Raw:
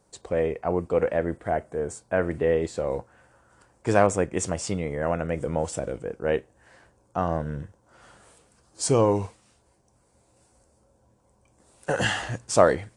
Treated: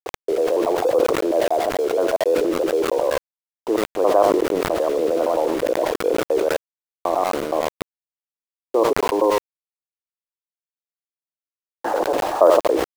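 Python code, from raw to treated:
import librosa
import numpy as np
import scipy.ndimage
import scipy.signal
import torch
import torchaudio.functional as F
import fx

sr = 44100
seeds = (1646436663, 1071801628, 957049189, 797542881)

p1 = fx.block_reorder(x, sr, ms=94.0, group=3)
p2 = scipy.signal.sosfilt(scipy.signal.cheby1(3, 1.0, [320.0, 1100.0], 'bandpass', fs=sr, output='sos'), p1)
p3 = fx.over_compress(p2, sr, threshold_db=-31.0, ratio=-0.5)
p4 = p2 + (p3 * librosa.db_to_amplitude(-2.0))
p5 = fx.echo_thinned(p4, sr, ms=78, feedback_pct=21, hz=600.0, wet_db=-9)
p6 = np.where(np.abs(p5) >= 10.0 ** (-35.5 / 20.0), p5, 0.0)
p7 = fx.sustainer(p6, sr, db_per_s=27.0)
y = p7 * librosa.db_to_amplitude(4.0)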